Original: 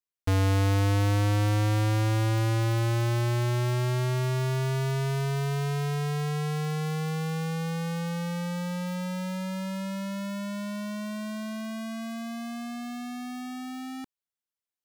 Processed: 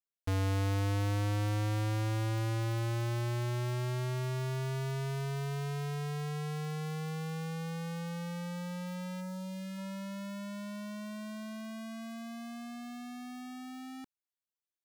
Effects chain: 9.20–9.77 s: peaking EQ 3.7 kHz -> 700 Hz -13.5 dB 0.77 oct; trim -7.5 dB

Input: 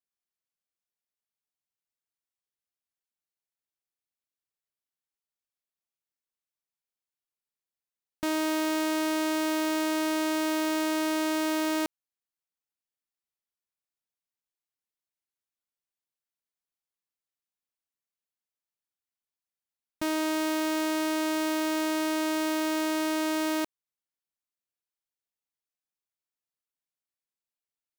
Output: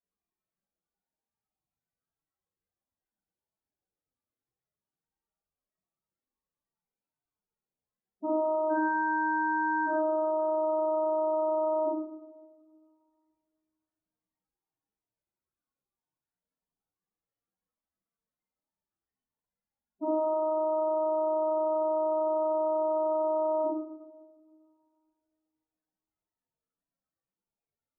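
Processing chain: 8.70–9.87 s: one-bit comparator; peak limiter -32.5 dBFS, peak gain reduction 9.5 dB; tape spacing loss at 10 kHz 23 dB; loudest bins only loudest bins 8; two-slope reverb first 0.79 s, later 2.3 s, from -19 dB, DRR -9.5 dB; trim +5.5 dB

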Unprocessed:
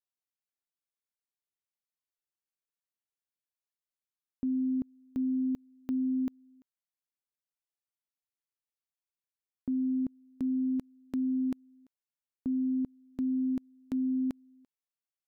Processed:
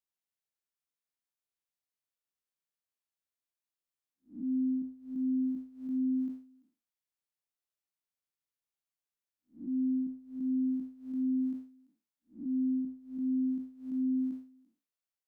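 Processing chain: spectral blur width 174 ms

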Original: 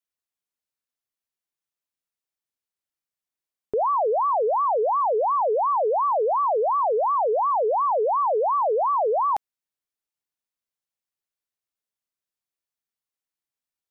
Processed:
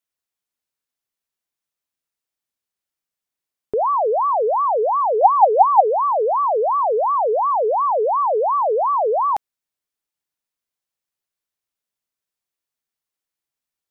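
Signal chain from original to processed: 5.21–5.81 s: peaking EQ 780 Hz +13.5 dB 0.29 oct; trim +3.5 dB

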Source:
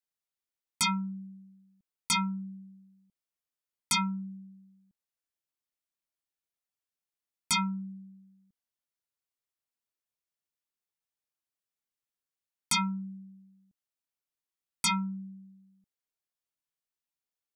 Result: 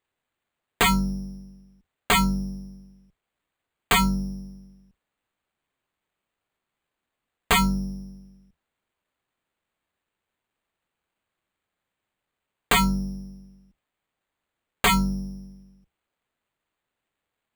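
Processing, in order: octave divider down 2 oct, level -3 dB; sample-rate reducer 5.5 kHz, jitter 0%; trim +8 dB

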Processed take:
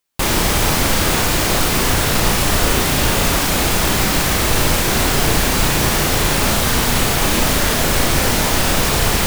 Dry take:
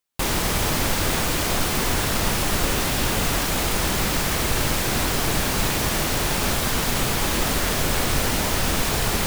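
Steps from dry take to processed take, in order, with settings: flutter echo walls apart 5.9 m, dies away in 0.29 s; trim +5.5 dB

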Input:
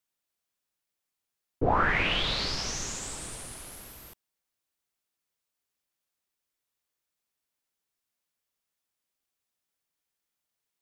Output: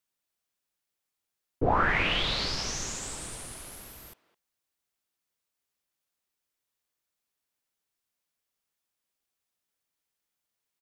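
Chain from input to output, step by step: speakerphone echo 210 ms, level -16 dB

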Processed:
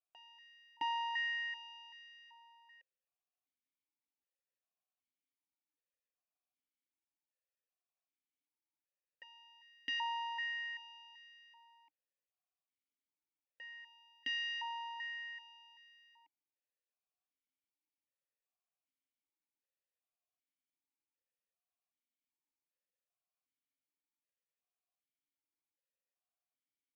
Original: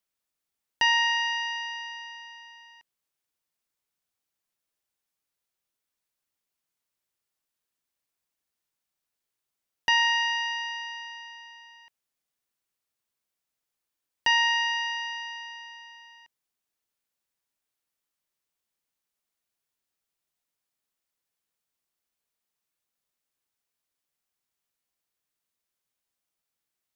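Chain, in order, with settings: on a send: reverse echo 663 ms -20 dB; on the sum: stepped vowel filter 2.6 Hz

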